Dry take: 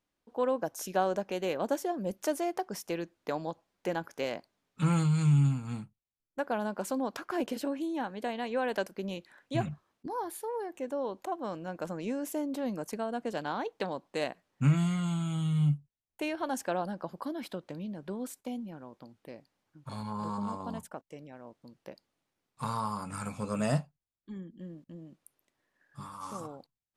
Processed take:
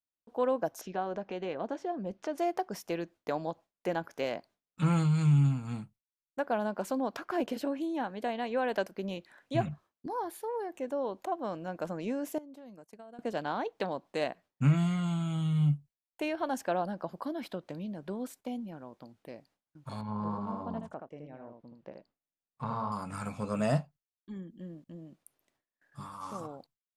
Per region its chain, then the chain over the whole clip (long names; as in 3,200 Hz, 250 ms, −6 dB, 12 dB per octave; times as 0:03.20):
0:00.81–0:02.38: high-frequency loss of the air 150 metres + downward compressor 1.5 to 1, threshold −36 dBFS + notch filter 580 Hz, Q 13
0:12.38–0:13.19: downward expander −32 dBFS + downward compressor 8 to 1, threshold −47 dBFS
0:20.01–0:22.92: head-to-tape spacing loss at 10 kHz 26 dB + single-tap delay 76 ms −5 dB
whole clip: dynamic equaliser 9,300 Hz, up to −6 dB, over −60 dBFS, Q 0.74; noise gate with hold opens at −58 dBFS; parametric band 670 Hz +3.5 dB 0.28 octaves